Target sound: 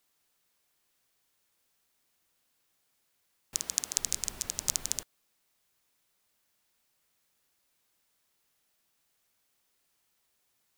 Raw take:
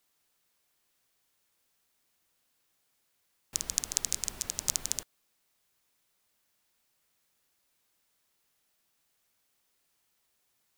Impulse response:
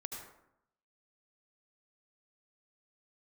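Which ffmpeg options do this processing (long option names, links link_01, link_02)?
-filter_complex "[0:a]asettb=1/sr,asplit=3[link_01][link_02][link_03];[link_01]atrim=end=3.554[link_04];[link_02]atrim=start=3.55:end=3.97,asetpts=PTS-STARTPTS,afade=type=in:duration=0.004:curve=qsin,afade=type=out:start_time=0.416:duration=0.004:curve=qsin,highpass=frequency=220:poles=1[link_05];[link_03]atrim=start=3.966[link_06];[link_04][link_05]acrossfade=duration=0.004:curve1=hsin:curve2=qsin[link_07];[link_07][link_06]acrossfade=duration=0.004:curve1=qsin:curve2=hsin"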